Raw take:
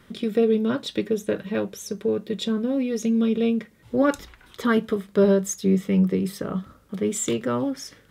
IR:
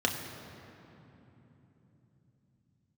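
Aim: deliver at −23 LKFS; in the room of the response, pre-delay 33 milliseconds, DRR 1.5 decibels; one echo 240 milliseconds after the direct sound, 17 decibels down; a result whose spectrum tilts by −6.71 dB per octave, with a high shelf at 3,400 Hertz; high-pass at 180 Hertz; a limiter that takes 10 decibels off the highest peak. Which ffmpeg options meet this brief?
-filter_complex "[0:a]highpass=180,highshelf=frequency=3400:gain=-8,alimiter=limit=-20dB:level=0:latency=1,aecho=1:1:240:0.141,asplit=2[link_01][link_02];[1:a]atrim=start_sample=2205,adelay=33[link_03];[link_02][link_03]afir=irnorm=-1:irlink=0,volume=-11dB[link_04];[link_01][link_04]amix=inputs=2:normalize=0,volume=2.5dB"

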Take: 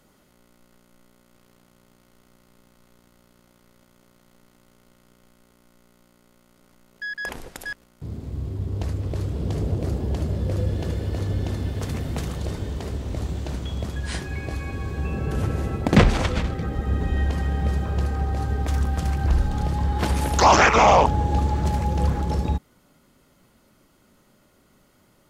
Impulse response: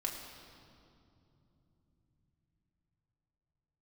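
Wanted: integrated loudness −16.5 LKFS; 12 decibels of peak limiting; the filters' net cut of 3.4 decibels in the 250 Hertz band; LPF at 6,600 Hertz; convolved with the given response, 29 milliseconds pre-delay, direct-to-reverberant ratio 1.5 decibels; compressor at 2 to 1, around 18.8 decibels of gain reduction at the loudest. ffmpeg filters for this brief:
-filter_complex "[0:a]lowpass=6600,equalizer=frequency=250:width_type=o:gain=-5,acompressor=threshold=-47dB:ratio=2,alimiter=level_in=8.5dB:limit=-24dB:level=0:latency=1,volume=-8.5dB,asplit=2[link_01][link_02];[1:a]atrim=start_sample=2205,adelay=29[link_03];[link_02][link_03]afir=irnorm=-1:irlink=0,volume=-3.5dB[link_04];[link_01][link_04]amix=inputs=2:normalize=0,volume=22dB"

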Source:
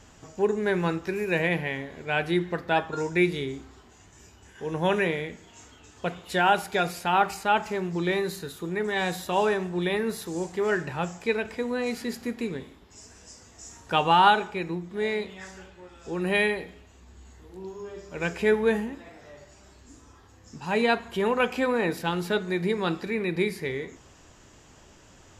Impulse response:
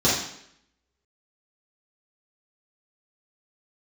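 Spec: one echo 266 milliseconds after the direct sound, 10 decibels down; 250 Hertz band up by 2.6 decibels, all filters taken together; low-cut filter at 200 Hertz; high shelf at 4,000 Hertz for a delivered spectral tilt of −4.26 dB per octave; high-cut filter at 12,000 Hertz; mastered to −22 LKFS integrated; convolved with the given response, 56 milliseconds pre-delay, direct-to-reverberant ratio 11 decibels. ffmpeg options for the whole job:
-filter_complex "[0:a]highpass=200,lowpass=12000,equalizer=frequency=250:width_type=o:gain=6.5,highshelf=frequency=4000:gain=-8,aecho=1:1:266:0.316,asplit=2[link_01][link_02];[1:a]atrim=start_sample=2205,adelay=56[link_03];[link_02][link_03]afir=irnorm=-1:irlink=0,volume=-28dB[link_04];[link_01][link_04]amix=inputs=2:normalize=0,volume=3dB"

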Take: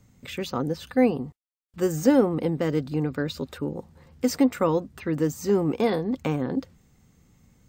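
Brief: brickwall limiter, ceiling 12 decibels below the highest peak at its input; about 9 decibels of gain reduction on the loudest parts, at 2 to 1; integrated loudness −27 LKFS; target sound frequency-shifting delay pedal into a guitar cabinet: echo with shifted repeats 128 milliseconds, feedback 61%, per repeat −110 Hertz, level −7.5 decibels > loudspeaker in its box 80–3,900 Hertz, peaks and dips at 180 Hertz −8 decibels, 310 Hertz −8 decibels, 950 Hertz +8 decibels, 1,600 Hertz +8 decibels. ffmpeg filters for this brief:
ffmpeg -i in.wav -filter_complex "[0:a]acompressor=threshold=-31dB:ratio=2,alimiter=level_in=4dB:limit=-24dB:level=0:latency=1,volume=-4dB,asplit=9[link_01][link_02][link_03][link_04][link_05][link_06][link_07][link_08][link_09];[link_02]adelay=128,afreqshift=-110,volume=-7.5dB[link_10];[link_03]adelay=256,afreqshift=-220,volume=-11.8dB[link_11];[link_04]adelay=384,afreqshift=-330,volume=-16.1dB[link_12];[link_05]adelay=512,afreqshift=-440,volume=-20.4dB[link_13];[link_06]adelay=640,afreqshift=-550,volume=-24.7dB[link_14];[link_07]adelay=768,afreqshift=-660,volume=-29dB[link_15];[link_08]adelay=896,afreqshift=-770,volume=-33.3dB[link_16];[link_09]adelay=1024,afreqshift=-880,volume=-37.6dB[link_17];[link_01][link_10][link_11][link_12][link_13][link_14][link_15][link_16][link_17]amix=inputs=9:normalize=0,highpass=80,equalizer=frequency=180:width_type=q:width=4:gain=-8,equalizer=frequency=310:width_type=q:width=4:gain=-8,equalizer=frequency=950:width_type=q:width=4:gain=8,equalizer=frequency=1600:width_type=q:width=4:gain=8,lowpass=frequency=3900:width=0.5412,lowpass=frequency=3900:width=1.3066,volume=12.5dB" out.wav

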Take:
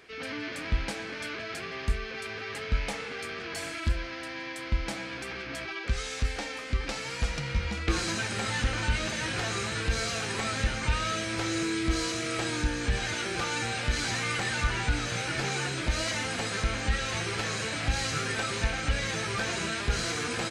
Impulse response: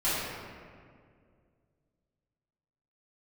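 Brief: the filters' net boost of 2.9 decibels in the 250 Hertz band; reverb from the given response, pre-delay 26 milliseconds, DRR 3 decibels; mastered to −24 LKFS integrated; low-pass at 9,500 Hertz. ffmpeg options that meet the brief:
-filter_complex "[0:a]lowpass=9500,equalizer=frequency=250:width_type=o:gain=4,asplit=2[link_01][link_02];[1:a]atrim=start_sample=2205,adelay=26[link_03];[link_02][link_03]afir=irnorm=-1:irlink=0,volume=-15dB[link_04];[link_01][link_04]amix=inputs=2:normalize=0,volume=4.5dB"

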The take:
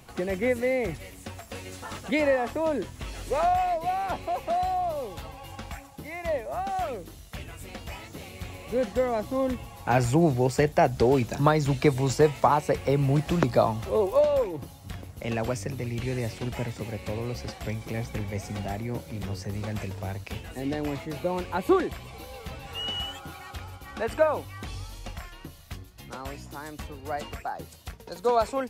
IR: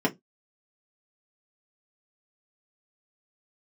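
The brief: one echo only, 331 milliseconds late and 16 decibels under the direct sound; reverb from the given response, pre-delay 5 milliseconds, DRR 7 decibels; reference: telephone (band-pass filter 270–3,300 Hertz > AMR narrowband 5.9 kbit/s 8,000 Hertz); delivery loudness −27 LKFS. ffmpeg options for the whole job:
-filter_complex "[0:a]aecho=1:1:331:0.158,asplit=2[link_01][link_02];[1:a]atrim=start_sample=2205,adelay=5[link_03];[link_02][link_03]afir=irnorm=-1:irlink=0,volume=-19dB[link_04];[link_01][link_04]amix=inputs=2:normalize=0,highpass=270,lowpass=3300,volume=0.5dB" -ar 8000 -c:a libopencore_amrnb -b:a 5900

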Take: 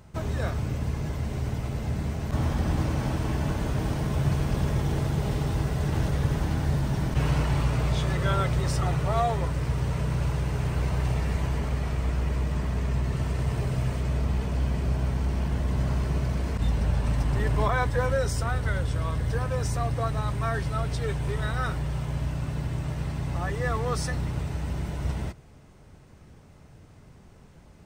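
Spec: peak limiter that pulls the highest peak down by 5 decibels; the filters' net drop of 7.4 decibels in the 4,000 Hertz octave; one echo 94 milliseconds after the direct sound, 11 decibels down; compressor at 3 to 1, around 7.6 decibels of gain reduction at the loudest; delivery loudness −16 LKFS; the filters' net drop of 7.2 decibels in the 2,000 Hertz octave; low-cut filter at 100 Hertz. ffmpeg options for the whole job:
ffmpeg -i in.wav -af "highpass=100,equalizer=frequency=2000:width_type=o:gain=-8.5,equalizer=frequency=4000:width_type=o:gain=-7,acompressor=threshold=-33dB:ratio=3,alimiter=level_in=4dB:limit=-24dB:level=0:latency=1,volume=-4dB,aecho=1:1:94:0.282,volume=21dB" out.wav

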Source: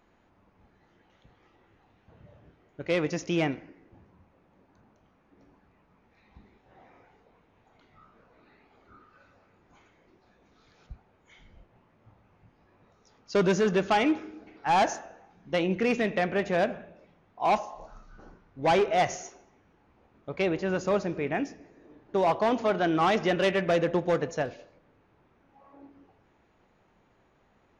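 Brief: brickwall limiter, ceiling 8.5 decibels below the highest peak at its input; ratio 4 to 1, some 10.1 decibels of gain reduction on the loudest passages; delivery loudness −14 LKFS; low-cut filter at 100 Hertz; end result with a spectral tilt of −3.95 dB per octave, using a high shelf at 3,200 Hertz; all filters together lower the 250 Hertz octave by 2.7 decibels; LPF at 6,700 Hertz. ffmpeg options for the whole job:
ffmpeg -i in.wav -af "highpass=100,lowpass=6700,equalizer=frequency=250:width_type=o:gain=-4,highshelf=frequency=3200:gain=8.5,acompressor=threshold=-32dB:ratio=4,volume=25dB,alimiter=limit=-2.5dB:level=0:latency=1" out.wav

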